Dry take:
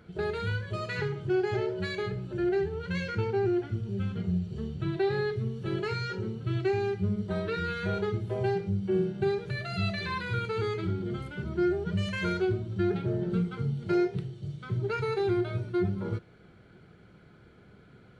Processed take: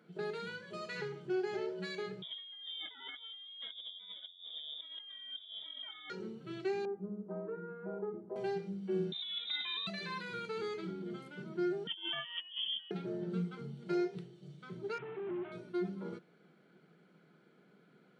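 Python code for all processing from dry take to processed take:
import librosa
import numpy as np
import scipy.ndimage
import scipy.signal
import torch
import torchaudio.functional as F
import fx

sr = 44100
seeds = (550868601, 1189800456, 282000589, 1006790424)

y = fx.chain(x, sr, fx.over_compress(threshold_db=-38.0, ratio=-1.0),
    fx.fixed_phaser(hz=370.0, stages=4),
    fx.freq_invert(carrier_hz=3600), at=(2.22, 6.1))
y = fx.chain(y, sr, fx.lowpass(hz=1100.0, slope=24),
    fx.peak_eq(hz=130.0, db=-9.5, octaves=0.81), at=(6.85, 8.36))
y = fx.chain(y, sr, fx.over_compress(threshold_db=-32.0, ratio=-1.0),
    fx.freq_invert(carrier_hz=3800), at=(9.12, 9.87))
y = fx.chain(y, sr, fx.over_compress(threshold_db=-34.0, ratio=-0.5),
    fx.freq_invert(carrier_hz=3300), at=(11.87, 12.91))
y = fx.chain(y, sr, fx.delta_mod(bps=16000, step_db=-45.0),
    fx.peak_eq(hz=500.0, db=-12.5, octaves=0.28), at=(14.98, 15.52))
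y = scipy.signal.sosfilt(scipy.signal.ellip(4, 1.0, 50, 160.0, 'highpass', fs=sr, output='sos'), y)
y = fx.dynamic_eq(y, sr, hz=5700.0, q=1.1, threshold_db=-57.0, ratio=4.0, max_db=5)
y = y * 10.0 ** (-7.5 / 20.0)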